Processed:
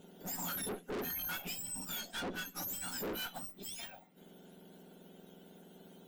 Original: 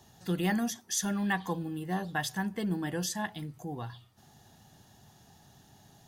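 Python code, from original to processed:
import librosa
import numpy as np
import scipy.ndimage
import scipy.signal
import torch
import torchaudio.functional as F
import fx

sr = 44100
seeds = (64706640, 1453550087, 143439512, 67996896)

y = fx.octave_mirror(x, sr, pivot_hz=1600.0)
y = fx.lowpass(y, sr, hz=8200.0, slope=12, at=(2.0, 2.53), fade=0.02)
y = fx.tube_stage(y, sr, drive_db=42.0, bias=0.75)
y = y * librosa.db_to_amplitude(5.0)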